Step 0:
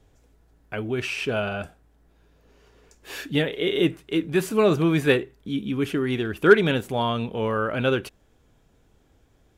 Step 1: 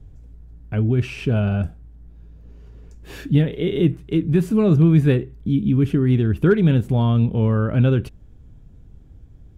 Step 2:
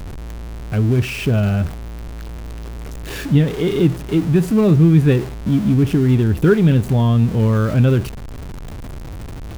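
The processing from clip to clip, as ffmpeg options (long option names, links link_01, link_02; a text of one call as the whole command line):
ffmpeg -i in.wav -af "lowshelf=frequency=490:gain=8.5,acompressor=threshold=-20dB:ratio=1.5,bass=frequency=250:gain=14,treble=frequency=4000:gain=-1,volume=-4.5dB" out.wav
ffmpeg -i in.wav -af "aeval=exprs='val(0)+0.5*0.0398*sgn(val(0))':channel_layout=same,volume=2dB" out.wav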